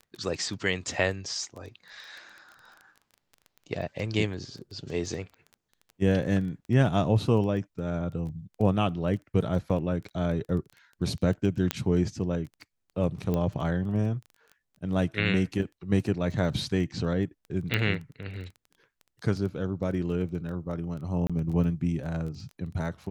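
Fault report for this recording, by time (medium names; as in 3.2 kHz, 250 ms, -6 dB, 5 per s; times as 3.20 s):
crackle 12 per s -36 dBFS
11.71 s: pop -9 dBFS
13.34 s: pop -17 dBFS
17.74 s: pop -12 dBFS
21.27–21.30 s: dropout 26 ms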